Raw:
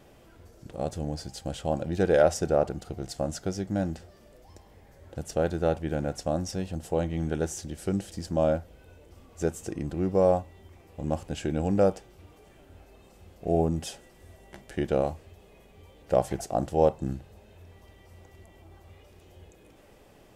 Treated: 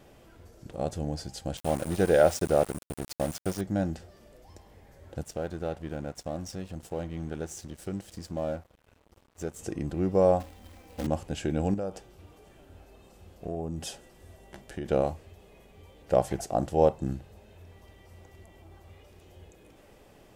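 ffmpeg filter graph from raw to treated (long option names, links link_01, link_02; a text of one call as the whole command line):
ffmpeg -i in.wav -filter_complex "[0:a]asettb=1/sr,asplit=3[link_01][link_02][link_03];[link_01]atrim=end=1.574[link_04];[link_02]atrim=start=1.57:end=3.61,asetpts=PTS-STARTPTS,afade=type=in:duration=0.004:curve=qsin,afade=type=out:start_time=2.036:duration=0.004:curve=qsin,aeval=exprs='val(0)+0.00398*sin(2*PI*9100*n/s)':channel_layout=same,aeval=exprs='val(0)*gte(abs(val(0)),0.02)':channel_layout=same[link_05];[link_03]atrim=start=3.606[link_06];[link_04][link_05]acrossfade=duration=0.004:curve1=hsin:curve2=qsin[link_07];[link_07][link_06]acrossfade=duration=0.004:curve1=qsin:curve2=hsin,asettb=1/sr,asplit=3[link_08][link_09][link_10];[link_08]atrim=end=5.234[link_11];[link_09]atrim=start=5.23:end=9.59,asetpts=PTS-STARTPTS,afade=type=in:duration=0.004:curve=qsin,afade=type=out:start_time=4.356:duration=0.004:curve=qsin,acompressor=threshold=-39dB:ratio=1.5:attack=3.2:release=140:knee=1:detection=peak,aeval=exprs='sgn(val(0))*max(abs(val(0))-0.00316,0)':channel_layout=same[link_12];[link_10]atrim=start=9.586[link_13];[link_11][link_12]acrossfade=duration=0.004:curve1=hsin:curve2=qsin[link_14];[link_14][link_13]acrossfade=duration=0.004:curve1=qsin:curve2=hsin,asettb=1/sr,asplit=3[link_15][link_16][link_17];[link_15]atrim=end=10.404[link_18];[link_16]atrim=start=10.4:end=11.07,asetpts=PTS-STARTPTS,afade=type=in:duration=0.004:curve=qsin,afade=type=out:start_time=0.666:duration=0.004:curve=qsin,aecho=1:1:3.9:0.89,atrim=end_sample=29547,acrusher=bits=2:mode=log:mix=0:aa=0.000001[link_19];[link_17]atrim=start=11.066[link_20];[link_18][link_19]acrossfade=duration=0.004:curve1=hsin:curve2=qsin[link_21];[link_21][link_20]acrossfade=duration=0.004:curve1=qsin:curve2=hsin,asettb=1/sr,asplit=3[link_22][link_23][link_24];[link_22]atrim=end=11.744[link_25];[link_23]atrim=start=11.74:end=14.86,asetpts=PTS-STARTPTS,afade=type=in:duration=0.004:curve=qsin,afade=type=out:start_time=3.116:duration=0.004:curve=qsin,equalizer=frequency=2100:width=5.5:gain=-3.5,acompressor=threshold=-31dB:ratio=4:attack=3.2:release=140:knee=1:detection=peak[link_26];[link_24]atrim=start=14.856[link_27];[link_25][link_26]acrossfade=duration=0.004:curve1=hsin:curve2=qsin[link_28];[link_28][link_27]acrossfade=duration=0.004:curve1=qsin:curve2=hsin" out.wav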